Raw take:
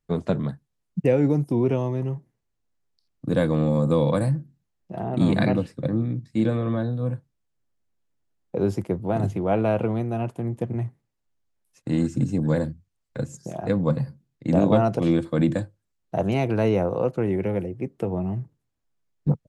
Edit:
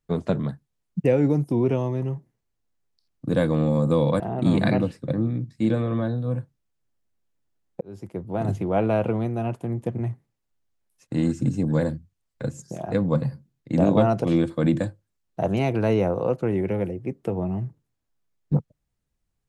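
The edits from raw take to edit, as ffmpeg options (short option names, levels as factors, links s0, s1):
-filter_complex "[0:a]asplit=3[s0][s1][s2];[s0]atrim=end=4.202[s3];[s1]atrim=start=4.948:end=8.56,asetpts=PTS-STARTPTS,afade=t=out:st=3.608:d=0.004:c=hsin[s4];[s2]atrim=start=8.56,asetpts=PTS-STARTPTS,afade=t=in:d=0.75[s5];[s4][s5]concat=n=2:v=0:a=1[s6];[s3][s6]acrossfade=d=0.004:c1=hsin:c2=hsin"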